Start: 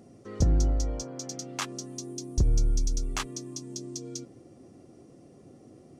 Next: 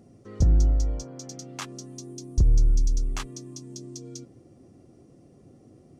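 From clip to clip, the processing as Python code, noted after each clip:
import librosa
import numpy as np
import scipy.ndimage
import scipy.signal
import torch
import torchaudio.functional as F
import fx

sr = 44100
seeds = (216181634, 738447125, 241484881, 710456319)

y = fx.low_shelf(x, sr, hz=150.0, db=9.0)
y = F.gain(torch.from_numpy(y), -3.5).numpy()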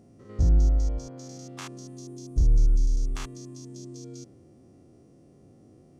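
y = fx.spec_steps(x, sr, hold_ms=100)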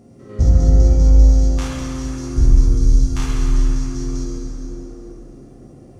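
y = fx.rev_plate(x, sr, seeds[0], rt60_s=4.2, hf_ratio=0.6, predelay_ms=0, drr_db=-4.5)
y = F.gain(torch.from_numpy(y), 6.0).numpy()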